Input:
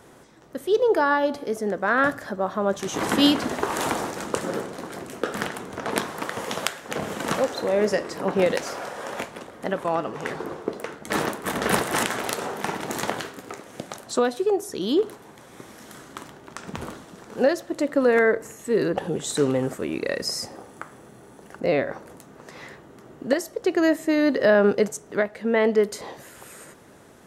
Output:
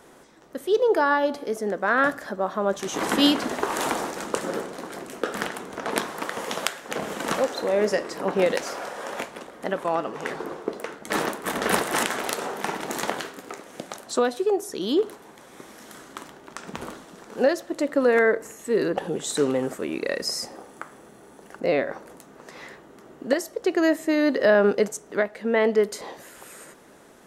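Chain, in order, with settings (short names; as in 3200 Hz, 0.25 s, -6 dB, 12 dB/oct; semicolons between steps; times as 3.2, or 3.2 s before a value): bell 100 Hz -11.5 dB 1.1 oct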